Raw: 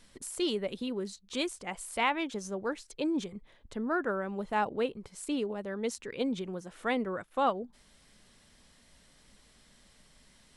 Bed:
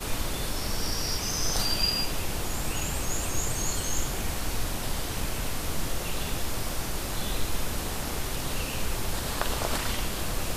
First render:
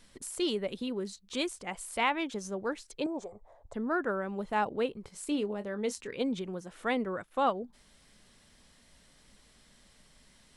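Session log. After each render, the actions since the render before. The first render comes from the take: 3.06–3.74 s: FFT filter 110 Hz 0 dB, 160 Hz -17 dB, 360 Hz -5 dB, 690 Hz +15 dB, 3 kHz -22 dB, 7.6 kHz -2 dB, 11 kHz -15 dB; 5.03–6.16 s: doubling 24 ms -11.5 dB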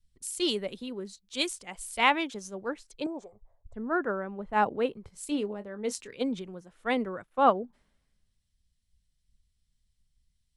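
three bands expanded up and down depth 100%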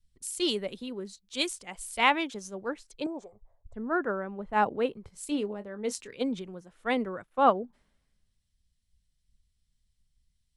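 no audible change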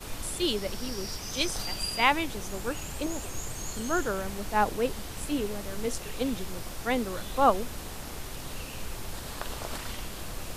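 add bed -7.5 dB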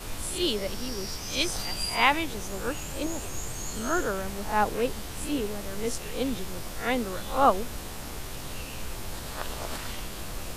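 reverse spectral sustain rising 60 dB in 0.33 s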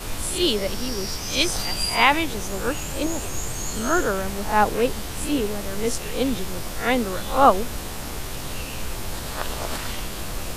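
trim +6 dB; peak limiter -2 dBFS, peak gain reduction 2 dB

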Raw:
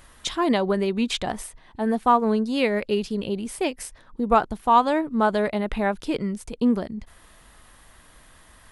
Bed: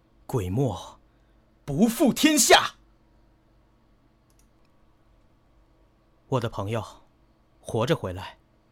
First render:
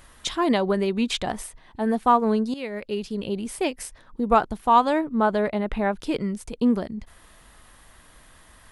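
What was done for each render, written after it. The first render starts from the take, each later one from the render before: 2.54–3.40 s: fade in, from -14 dB; 5.04–6.00 s: treble shelf 3.5 kHz -8 dB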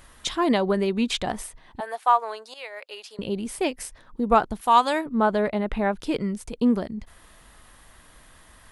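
1.80–3.19 s: high-pass 630 Hz 24 dB/octave; 4.61–5.06 s: tilt EQ +3 dB/octave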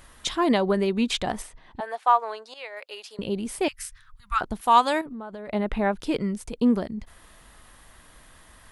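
1.42–2.77 s: distance through air 53 m; 3.68–4.41 s: elliptic band-stop 110–1300 Hz, stop band 50 dB; 5.01–5.49 s: compression 8:1, threshold -34 dBFS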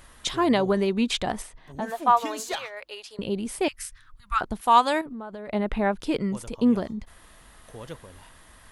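add bed -16 dB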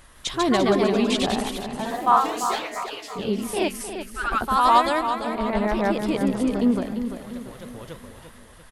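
feedback delay 344 ms, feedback 47%, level -9 dB; ever faster or slower copies 158 ms, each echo +1 st, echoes 2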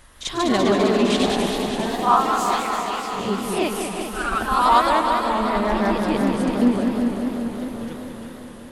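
reverse echo 41 ms -9 dB; modulated delay 199 ms, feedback 77%, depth 158 cents, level -6.5 dB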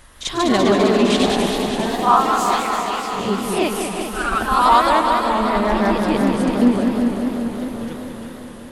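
trim +3 dB; peak limiter -2 dBFS, peak gain reduction 2 dB

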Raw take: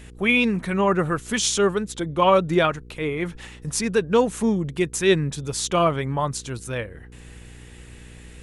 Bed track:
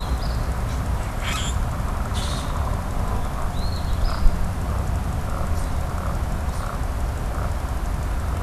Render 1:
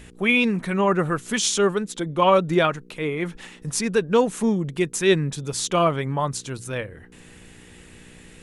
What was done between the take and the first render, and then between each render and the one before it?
de-hum 60 Hz, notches 2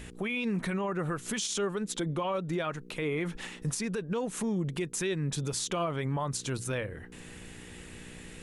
compression 6:1, threshold -25 dBFS, peak gain reduction 12 dB; peak limiter -23.5 dBFS, peak gain reduction 9.5 dB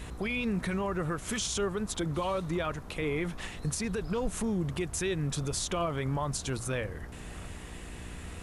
add bed track -20 dB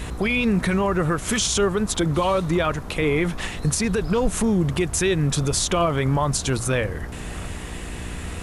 trim +10.5 dB

